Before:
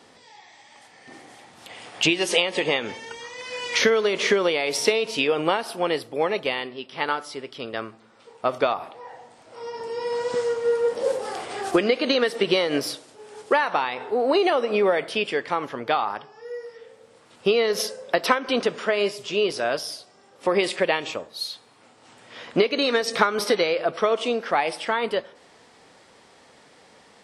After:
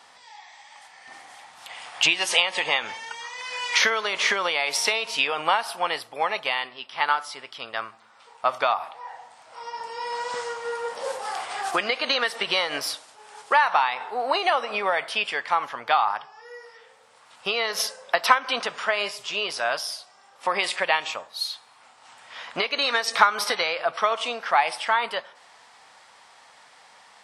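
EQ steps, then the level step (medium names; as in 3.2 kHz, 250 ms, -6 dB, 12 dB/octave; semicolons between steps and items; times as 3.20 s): resonant low shelf 580 Hz -13 dB, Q 1.5; +1.5 dB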